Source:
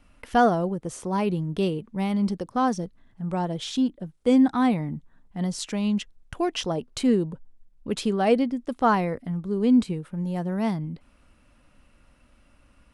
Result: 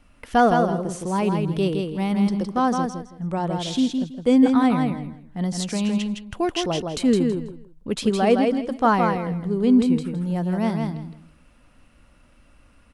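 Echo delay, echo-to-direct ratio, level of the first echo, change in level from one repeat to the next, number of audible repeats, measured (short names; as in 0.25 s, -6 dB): 0.163 s, -4.5 dB, -4.5 dB, -13.0 dB, 3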